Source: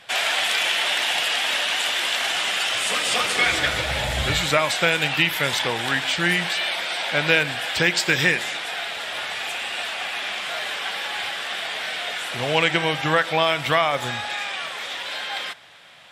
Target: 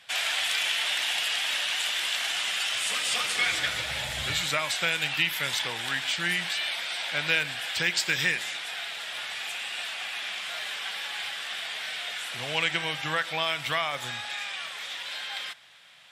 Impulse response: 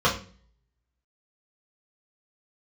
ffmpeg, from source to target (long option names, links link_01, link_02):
-af "highpass=110,equalizer=frequency=390:width=0.35:gain=-10,volume=-3.5dB"